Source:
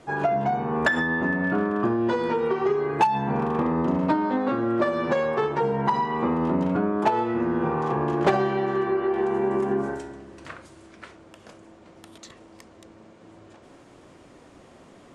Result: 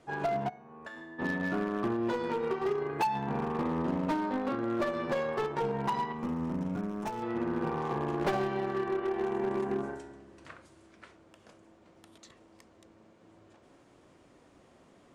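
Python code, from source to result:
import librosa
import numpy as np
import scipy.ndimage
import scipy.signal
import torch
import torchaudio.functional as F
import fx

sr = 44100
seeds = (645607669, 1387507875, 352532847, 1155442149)

y = fx.comb_fb(x, sr, f0_hz=110.0, decay_s=0.8, harmonics='all', damping=0.0, mix_pct=90, at=(0.48, 1.18), fade=0.02)
y = fx.cheby_harmonics(y, sr, harmonics=(3,), levels_db=(-12,), full_scale_db=-9.0)
y = np.clip(10.0 ** (26.5 / 20.0) * y, -1.0, 1.0) / 10.0 ** (26.5 / 20.0)
y = fx.spec_box(y, sr, start_s=6.13, length_s=1.1, low_hz=270.0, high_hz=5100.0, gain_db=-7)
y = y * librosa.db_to_amplitude(2.5)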